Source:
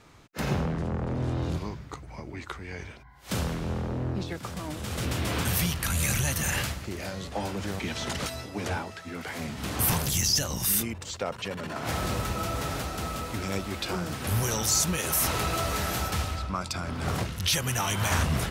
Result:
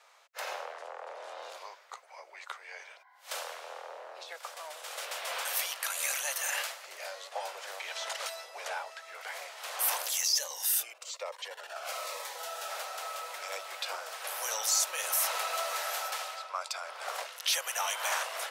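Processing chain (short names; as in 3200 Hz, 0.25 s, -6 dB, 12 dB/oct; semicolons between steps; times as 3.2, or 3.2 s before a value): steep high-pass 530 Hz 48 dB/oct; 10.24–12.7 cascading phaser falling 1.1 Hz; gain -3 dB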